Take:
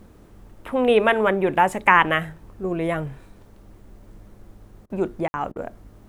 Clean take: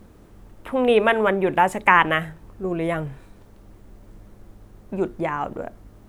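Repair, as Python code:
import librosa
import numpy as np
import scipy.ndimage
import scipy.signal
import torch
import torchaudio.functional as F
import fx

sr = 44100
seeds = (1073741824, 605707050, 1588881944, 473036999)

y = fx.fix_ambience(x, sr, seeds[0], print_start_s=0.07, print_end_s=0.57, start_s=5.28, end_s=5.34)
y = fx.fix_interpolate(y, sr, at_s=(4.86, 5.52), length_ms=38.0)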